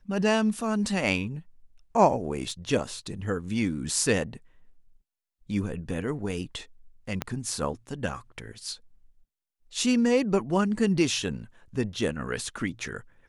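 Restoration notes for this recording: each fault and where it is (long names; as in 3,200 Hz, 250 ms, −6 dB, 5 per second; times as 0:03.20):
0:02.51: drop-out 2.8 ms
0:07.22: click −13 dBFS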